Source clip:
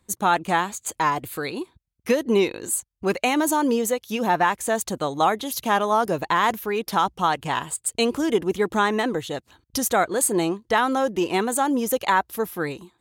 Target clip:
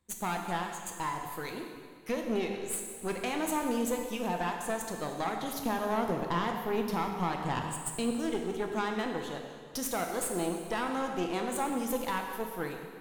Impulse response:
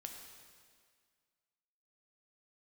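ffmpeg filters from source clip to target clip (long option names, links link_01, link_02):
-filter_complex "[0:a]asettb=1/sr,asplit=3[link_01][link_02][link_03];[link_01]atrim=end=5.424[link_04];[link_02]atrim=start=5.42:end=8.11,asetpts=PTS-STARTPTS,afade=type=in:duration=0.004:curve=qsin,afade=type=out:start_time=2.686:duration=0.004:curve=qsin,lowshelf=frequency=450:gain=11[link_05];[link_03]atrim=start=8.106[link_06];[link_04][link_05]acrossfade=duration=0.004:curve1=hsin:curve2=qsin[link_07];[link_07][link_06]acrossfade=duration=0.004:curve1=qsin:curve2=hsin,alimiter=limit=-12dB:level=0:latency=1:release=394,aeval=exprs='(tanh(7.08*val(0)+0.7)-tanh(0.7))/7.08':channel_layout=same[link_08];[1:a]atrim=start_sample=2205[link_09];[link_08][link_09]afir=irnorm=-1:irlink=0,volume=-1.5dB"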